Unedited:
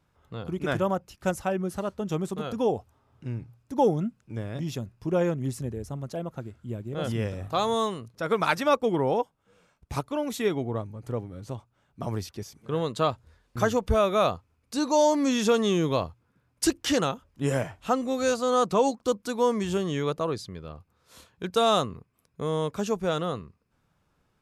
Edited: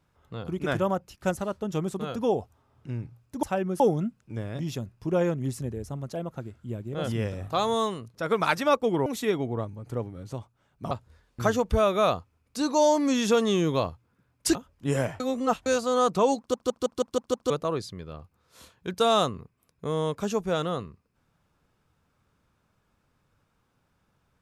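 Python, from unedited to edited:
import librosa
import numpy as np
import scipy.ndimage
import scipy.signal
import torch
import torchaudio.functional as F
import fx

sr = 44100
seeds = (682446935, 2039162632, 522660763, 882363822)

y = fx.edit(x, sr, fx.move(start_s=1.37, length_s=0.37, to_s=3.8),
    fx.cut(start_s=9.06, length_s=1.17),
    fx.cut(start_s=12.08, length_s=1.0),
    fx.cut(start_s=16.72, length_s=0.39),
    fx.reverse_span(start_s=17.76, length_s=0.46),
    fx.stutter_over(start_s=18.94, slice_s=0.16, count=7), tone=tone)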